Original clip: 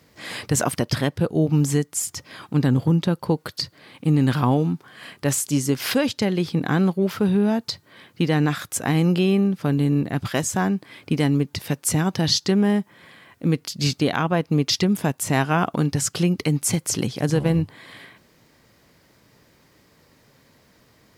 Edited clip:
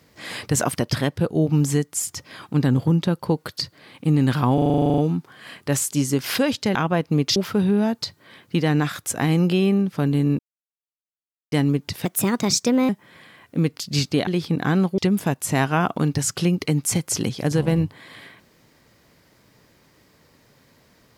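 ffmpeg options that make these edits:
-filter_complex "[0:a]asplit=20[a][b][c][d][e][f][g][h][i][j][k][l][m][n][o][p][q][r][s][t];[a]atrim=end=4.582[u];[b]atrim=start=4.538:end=4.582[v];[c]atrim=start=4.538:end=4.582[w];[d]atrim=start=4.538:end=4.582[x];[e]atrim=start=4.538:end=4.582[y];[f]atrim=start=4.538:end=4.582[z];[g]atrim=start=4.538:end=4.582[aa];[h]atrim=start=4.538:end=4.582[ab];[i]atrim=start=4.538:end=4.582[ac];[j]atrim=start=4.538:end=4.582[ad];[k]atrim=start=4.538:end=4.582[ae];[l]atrim=start=4.538:end=6.312[af];[m]atrim=start=14.148:end=14.762[ag];[n]atrim=start=7.018:end=10.05,asetpts=PTS-STARTPTS,afade=t=out:st=3.028:d=0.004:c=hsin[ah];[o]atrim=start=10.05:end=11.18,asetpts=PTS-STARTPTS,volume=0[ai];[p]atrim=start=11.18:end=11.714,asetpts=PTS-STARTPTS,afade=t=in:d=0.004:c=hsin[aj];[q]atrim=start=11.71:end=12.77,asetpts=PTS-STARTPTS,asetrate=55566,aresample=44100[ak];[r]atrim=start=12.766:end=14.152[al];[s]atrim=start=6.308:end=7.022[am];[t]atrim=start=14.758[an];[u][v]acrossfade=d=0.004:c1=hsin:c2=hsin[ao];[ao][w]acrossfade=d=0.004:c1=hsin:c2=hsin[ap];[ap][x]acrossfade=d=0.004:c1=hsin:c2=hsin[aq];[aq][y]acrossfade=d=0.004:c1=hsin:c2=hsin[ar];[ar][z]acrossfade=d=0.004:c1=hsin:c2=hsin[as];[as][aa]acrossfade=d=0.004:c1=hsin:c2=hsin[at];[at][ab]acrossfade=d=0.004:c1=hsin:c2=hsin[au];[au][ac]acrossfade=d=0.004:c1=hsin:c2=hsin[av];[av][ad]acrossfade=d=0.004:c1=hsin:c2=hsin[aw];[aw][ae]acrossfade=d=0.004:c1=hsin:c2=hsin[ax];[ax][af]acrossfade=d=0.004:c1=hsin:c2=hsin[ay];[ay][ag]acrossfade=d=0.004:c1=hsin:c2=hsin[az];[ah][ai][aj]concat=n=3:v=0:a=1[ba];[az][ba]acrossfade=d=0.004:c1=hsin:c2=hsin[bb];[bb][ak]acrossfade=d=0.004:c1=hsin:c2=hsin[bc];[bc][al]acrossfade=d=0.004:c1=hsin:c2=hsin[bd];[bd][am]acrossfade=d=0.004:c1=hsin:c2=hsin[be];[be][an]acrossfade=d=0.004:c1=hsin:c2=hsin"

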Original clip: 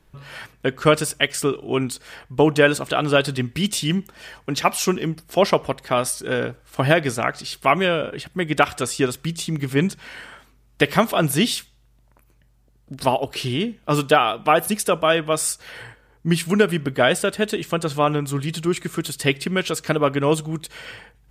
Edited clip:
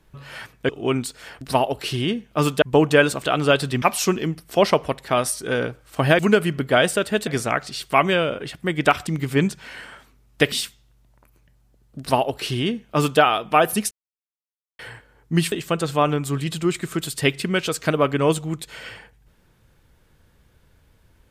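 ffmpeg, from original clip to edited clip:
-filter_complex "[0:a]asplit=12[a][b][c][d][e][f][g][h][i][j][k][l];[a]atrim=end=0.692[m];[b]atrim=start=1.548:end=2.272[n];[c]atrim=start=12.928:end=14.142[o];[d]atrim=start=2.268:end=3.472[p];[e]atrim=start=4.618:end=6.992[q];[f]atrim=start=16.458:end=17.542[r];[g]atrim=start=6.988:end=8.792[s];[h]atrim=start=9.468:end=10.922[t];[i]atrim=start=11.458:end=14.85,asetpts=PTS-STARTPTS,afade=t=out:st=3.388:d=0.004:c=hsin[u];[j]atrim=start=14.85:end=15.73,asetpts=PTS-STARTPTS,volume=0[v];[k]atrim=start=15.73:end=16.462,asetpts=PTS-STARTPTS,afade=t=in:d=0.004:c=hsin[w];[l]atrim=start=17.538[x];[m][n]acrossfade=d=0.004:c1=hsin:c2=hsin[y];[y][o]acrossfade=d=0.004:c1=hsin:c2=hsin[z];[z][p]acrossfade=d=0.004:c1=hsin:c2=hsin[aa];[aa][q]acrossfade=d=0.004:c1=hsin:c2=hsin[ab];[ab][r]acrossfade=d=0.004:c1=hsin:c2=hsin[ac];[ac][s]acrossfade=d=0.004:c1=hsin:c2=hsin[ad];[ad][t]acrossfade=d=0.004:c1=hsin:c2=hsin[ae];[u][v][w]concat=n=3:v=0:a=1[af];[ae][af]acrossfade=d=0.004:c1=hsin:c2=hsin[ag];[ag][x]acrossfade=d=0.004:c1=hsin:c2=hsin"

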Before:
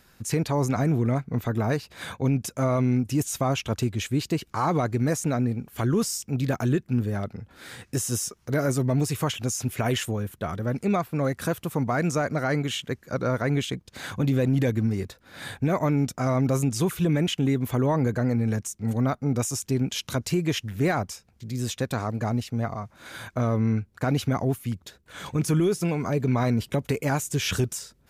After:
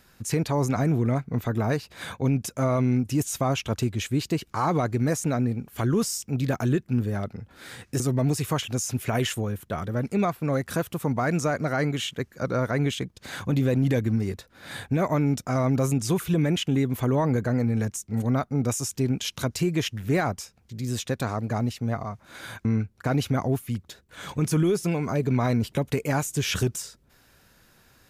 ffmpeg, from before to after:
-filter_complex "[0:a]asplit=3[a][b][c];[a]atrim=end=8.002[d];[b]atrim=start=8.708:end=23.362[e];[c]atrim=start=23.618[f];[d][e]acrossfade=d=0.004:c1=hsin:c2=hsin[g];[g][f]acrossfade=d=0.004:c1=hsin:c2=hsin"

